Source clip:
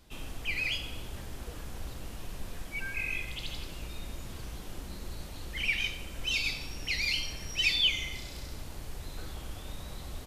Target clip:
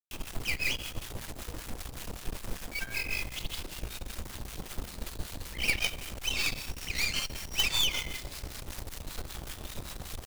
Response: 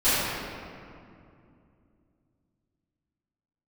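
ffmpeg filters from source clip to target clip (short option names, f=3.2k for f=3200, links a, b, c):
-filter_complex "[0:a]acrusher=bits=6:mix=0:aa=0.000001,acrossover=split=980[a][b];[a]aeval=exprs='val(0)*(1-0.7/2+0.7/2*cos(2*PI*5.2*n/s))':c=same[c];[b]aeval=exprs='val(0)*(1-0.7/2-0.7/2*cos(2*PI*5.2*n/s))':c=same[d];[c][d]amix=inputs=2:normalize=0,aeval=exprs='0.126*(cos(1*acos(clip(val(0)/0.126,-1,1)))-cos(1*PI/2))+0.0562*(cos(4*acos(clip(val(0)/0.126,-1,1)))-cos(4*PI/2))+0.0562*(cos(6*acos(clip(val(0)/0.126,-1,1)))-cos(6*PI/2))':c=same,volume=2dB"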